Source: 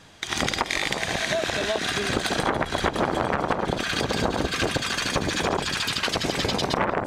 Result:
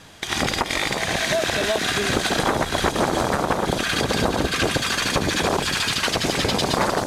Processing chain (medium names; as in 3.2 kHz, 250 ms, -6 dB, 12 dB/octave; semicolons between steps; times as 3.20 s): CVSD coder 64 kbps; in parallel at -3.5 dB: saturation -19 dBFS, distortion -13 dB; on the sum: feedback echo behind a high-pass 936 ms, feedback 53%, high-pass 5 kHz, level -4 dB